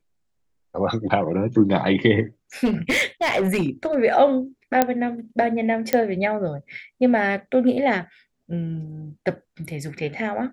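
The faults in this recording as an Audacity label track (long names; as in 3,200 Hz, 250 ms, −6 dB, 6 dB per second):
2.640000	3.960000	clipping −16.5 dBFS
4.820000	4.820000	click −3 dBFS
5.930000	5.930000	click −5 dBFS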